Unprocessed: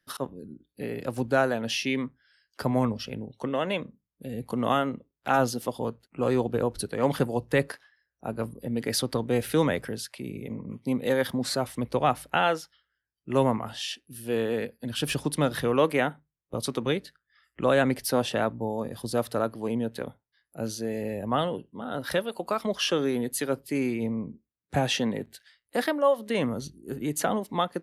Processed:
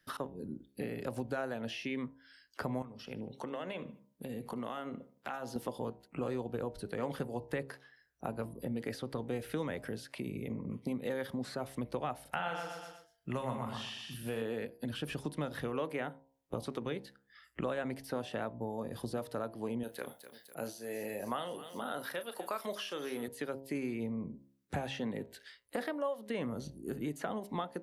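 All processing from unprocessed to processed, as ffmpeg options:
-filter_complex "[0:a]asettb=1/sr,asplit=3[s0][s1][s2];[s0]atrim=end=2.824[s3];[s1]atrim=start=2.82:end=5.56,asetpts=PTS-STARTPTS,afade=t=in:d=0.004:c=qsin,afade=t=out:st=2.736:d=0.004:c=qsin,highpass=f=170:p=1,acompressor=threshold=0.00794:ratio=2.5:attack=3.2:release=140:knee=1:detection=peak,asplit=2[s4][s5];[s5]adelay=75,lowpass=f=3300:p=1,volume=0.1,asplit=2[s6][s7];[s7]adelay=75,lowpass=f=3300:p=1,volume=0.45,asplit=2[s8][s9];[s9]adelay=75,lowpass=f=3300:p=1,volume=0.45[s10];[s4][s6][s8][s10]amix=inputs=4:normalize=0,atrim=end_sample=120834[s11];[s2]atrim=start=5.556[s12];[s3][s11]acrossfade=d=0.004:c1=hsin:c2=qsin[s13];[s13][s12]acrossfade=d=0.004:c1=qsin:c2=hsin,asettb=1/sr,asplit=3[s14][s15][s16];[s14]atrim=end=12.214[s17];[s15]atrim=start=12.21:end=14.42,asetpts=PTS-STARTPTS,afade=t=in:d=0.004:c=qsin,afade=t=out:st=2.206:d=0.004:c=qsin,equalizer=f=340:t=o:w=0.92:g=-7.5,asplit=2[s18][s19];[s19]adelay=40,volume=0.422[s20];[s18][s20]amix=inputs=2:normalize=0,atrim=end_sample=97461,aecho=1:1:121|242|363|484:0.473|0.147|0.0455|0.0141,atrim=end_sample=97461[s21];[s16]atrim=start=14.416[s22];[s17][s21]acrossfade=d=0.004:c1=hsin:c2=qsin[s23];[s23][s22]acrossfade=d=0.004:c1=qsin:c2=hsin,asettb=1/sr,asplit=3[s24][s25][s26];[s24]atrim=end=19.834[s27];[s25]atrim=start=19.83:end=23.28,asetpts=PTS-STARTPTS,afade=t=in:d=0.004:c=qsin,afade=t=out:st=3.446:d=0.004:c=qsin,aemphasis=mode=production:type=riaa,asplit=2[s28][s29];[s29]adelay=34,volume=0.237[s30];[s28][s30]amix=inputs=2:normalize=0,atrim=end_sample=152145,aecho=1:1:250|500|750|1000:0.0794|0.0421|0.0223|0.0118,atrim=end_sample=152145[s31];[s26]atrim=start=23.276[s32];[s27][s31]acrossfade=d=0.004:c1=hsin:c2=qsin[s33];[s33][s32]acrossfade=d=0.004:c1=qsin:c2=hsin,acompressor=threshold=0.01:ratio=4,bandreject=f=67.59:t=h:w=4,bandreject=f=135.18:t=h:w=4,bandreject=f=202.77:t=h:w=4,bandreject=f=270.36:t=h:w=4,bandreject=f=337.95:t=h:w=4,bandreject=f=405.54:t=h:w=4,bandreject=f=473.13:t=h:w=4,bandreject=f=540.72:t=h:w=4,bandreject=f=608.31:t=h:w=4,bandreject=f=675.9:t=h:w=4,bandreject=f=743.49:t=h:w=4,bandreject=f=811.08:t=h:w=4,bandreject=f=878.67:t=h:w=4,bandreject=f=946.26:t=h:w=4,bandreject=f=1013.85:t=h:w=4,acrossover=split=2700[s34][s35];[s35]acompressor=threshold=0.002:ratio=4:attack=1:release=60[s36];[s34][s36]amix=inputs=2:normalize=0,volume=1.58"

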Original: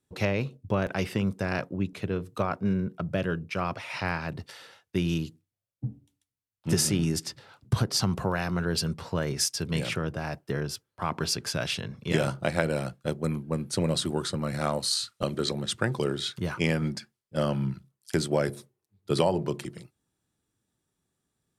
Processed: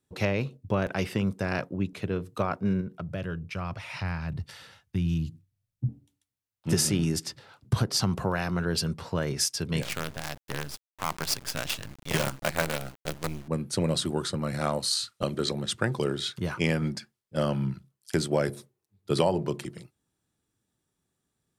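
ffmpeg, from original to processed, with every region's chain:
-filter_complex "[0:a]asettb=1/sr,asplit=3[s0][s1][s2];[s0]atrim=end=2.814[s3];[s1]atrim=start=2.81:end=5.89,asetpts=PTS-STARTPTS,afade=t=in:d=0.004:c=qsin,afade=t=out:st=3.076:d=0.004:c=qsin,asubboost=boost=11.5:cutoff=150,acompressor=threshold=0.0112:ratio=1.5:attack=3.2:release=140:knee=1:detection=peak[s4];[s2]atrim=start=5.886[s5];[s3][s4]acrossfade=d=0.004:c1=hsin:c2=qsin[s6];[s6][s5]acrossfade=d=0.004:c1=qsin:c2=hsin,asettb=1/sr,asplit=3[s7][s8][s9];[s7]atrim=end=9.824[s10];[s8]atrim=start=9.82:end=13.48,asetpts=PTS-STARTPTS,afade=t=in:d=0.004:c=qsin,afade=t=out:st=3.656:d=0.004:c=qsin,equalizer=f=330:t=o:w=1.1:g=-7.5,bandreject=f=60:t=h:w=6,bandreject=f=120:t=h:w=6,bandreject=f=180:t=h:w=6,bandreject=f=240:t=h:w=6,acrusher=bits=5:dc=4:mix=0:aa=0.000001[s11];[s9]atrim=start=13.476[s12];[s10][s11]acrossfade=d=0.004:c1=hsin:c2=qsin[s13];[s13][s12]acrossfade=d=0.004:c1=qsin:c2=hsin"

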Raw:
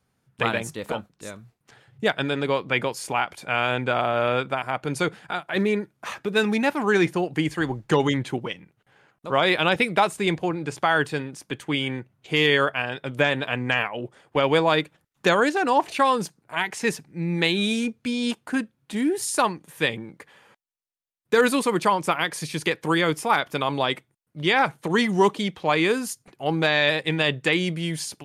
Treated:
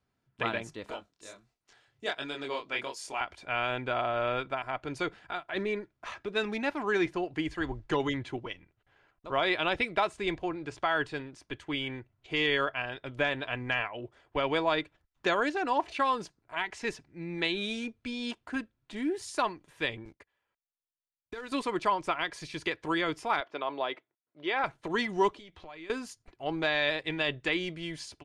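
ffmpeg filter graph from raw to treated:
-filter_complex "[0:a]asettb=1/sr,asplit=3[s0][s1][s2];[s0]atrim=end=0.904[s3];[s1]atrim=start=0.9:end=3.21,asetpts=PTS-STARTPTS,afade=t=in:d=0.004:c=qsin,afade=t=out:st=2.306:d=0.004:c=qsin,bass=f=250:g=-8,treble=f=4000:g=11,flanger=delay=20:depth=7.2:speed=1.4[s4];[s2]atrim=start=3.206[s5];[s3][s4]acrossfade=d=0.004:c1=hsin:c2=qsin[s6];[s6][s5]acrossfade=d=0.004:c1=qsin:c2=hsin,asettb=1/sr,asplit=3[s7][s8][s9];[s7]atrim=end=20.054[s10];[s8]atrim=start=20.05:end=21.52,asetpts=PTS-STARTPTS,afade=t=in:d=0.004:c=qsin,afade=t=out:st=1.466:d=0.004:c=qsin,agate=range=0.1:threshold=0.00631:ratio=16:release=100:detection=peak,acompressor=threshold=0.0355:ratio=6:attack=3.2:release=140:knee=1:detection=peak,acrusher=bits=5:mode=log:mix=0:aa=0.000001[s11];[s9]atrim=start=21.516[s12];[s10][s11]acrossfade=d=0.004:c1=hsin:c2=qsin[s13];[s13][s12]acrossfade=d=0.004:c1=qsin:c2=hsin,asettb=1/sr,asplit=3[s14][s15][s16];[s14]atrim=end=23.404[s17];[s15]atrim=start=23.4:end=24.64,asetpts=PTS-STARTPTS,afade=t=in:d=0.004:c=qsin,afade=t=out:st=1.236:d=0.004:c=qsin,highpass=430,lowpass=4500,tiltshelf=f=800:g=4.5[s18];[s16]atrim=start=24.636[s19];[s17][s18]acrossfade=d=0.004:c1=hsin:c2=qsin[s20];[s20][s19]acrossfade=d=0.004:c1=qsin:c2=hsin,asettb=1/sr,asplit=3[s21][s22][s23];[s21]atrim=end=25.294[s24];[s22]atrim=start=25.29:end=25.9,asetpts=PTS-STARTPTS,afade=t=in:d=0.004:c=qsin,afade=t=out:st=0.606:d=0.004:c=qsin,acompressor=threshold=0.0112:ratio=4:attack=3.2:release=140:knee=1:detection=peak,asplit=2[s25][s26];[s26]adelay=12,volume=0.282[s27];[s25][s27]amix=inputs=2:normalize=0,atrim=end_sample=26901[s28];[s23]atrim=start=25.896[s29];[s24][s28]acrossfade=d=0.004:c1=hsin:c2=qsin[s30];[s30][s29]acrossfade=d=0.004:c1=qsin:c2=hsin,lowpass=5400,aecho=1:1:3:0.3,asubboost=boost=8.5:cutoff=57,volume=0.422"

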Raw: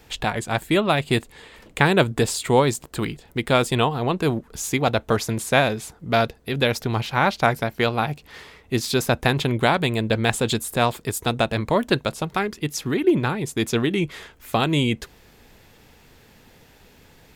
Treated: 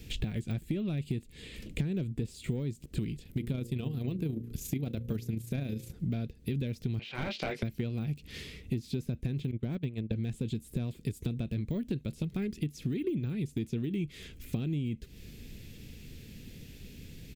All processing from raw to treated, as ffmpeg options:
-filter_complex "[0:a]asettb=1/sr,asplit=3[s0][s1][s2];[s0]atrim=end=3.234[s3];[s1]atrim=start=3.23:end=5.94,asetpts=PTS-STARTPTS,afade=t=in:d=0.004:c=qsin,afade=t=out:st=2.706:d=0.004:c=qsin,equalizer=f=13000:w=2.4:g=13.5,bandreject=f=58.66:t=h:w=4,bandreject=f=117.32:t=h:w=4,bandreject=f=175.98:t=h:w=4,bandreject=f=234.64:t=h:w=4,bandreject=f=293.3:t=h:w=4,bandreject=f=351.96:t=h:w=4,bandreject=f=410.62:t=h:w=4,bandreject=f=469.28:t=h:w=4,bandreject=f=527.94:t=h:w=4,tremolo=f=28:d=0.462[s4];[s2]atrim=start=5.936[s5];[s3][s4]acrossfade=d=0.004:c1=hsin:c2=qsin[s6];[s6][s5]acrossfade=d=0.004:c1=qsin:c2=hsin,asettb=1/sr,asplit=3[s7][s8][s9];[s7]atrim=end=6.994[s10];[s8]atrim=start=6.99:end=7.63,asetpts=PTS-STARTPTS,afade=t=in:d=0.004:c=qsin,afade=t=out:st=0.636:d=0.004:c=qsin,acontrast=47,highpass=630,lowpass=2800,asplit=2[s11][s12];[s12]adelay=19,volume=0.531[s13];[s11][s13]amix=inputs=2:normalize=0,atrim=end_sample=28224[s14];[s9]atrim=start=7.626[s15];[s10][s14]acrossfade=d=0.004:c1=hsin:c2=qsin[s16];[s16][s15]acrossfade=d=0.004:c1=qsin:c2=hsin,asettb=1/sr,asplit=3[s17][s18][s19];[s17]atrim=end=9.514[s20];[s18]atrim=start=9.51:end=10.16,asetpts=PTS-STARTPTS,afade=t=in:d=0.004:c=qsin,afade=t=out:st=0.646:d=0.004:c=qsin,lowpass=f=1900:p=1,agate=range=0.126:threshold=0.0708:ratio=16:release=100:detection=peak[s21];[s19]atrim=start=10.156[s22];[s20][s21]acrossfade=d=0.004:c1=hsin:c2=qsin[s23];[s23][s22]acrossfade=d=0.004:c1=qsin:c2=hsin,deesser=1,firequalizer=gain_entry='entry(190,0);entry(860,-28);entry(2400,-7)':delay=0.05:min_phase=1,acompressor=threshold=0.0141:ratio=12,volume=2.37"

